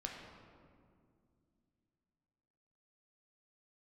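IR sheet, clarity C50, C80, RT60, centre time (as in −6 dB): 2.5 dB, 4.0 dB, 2.3 s, 73 ms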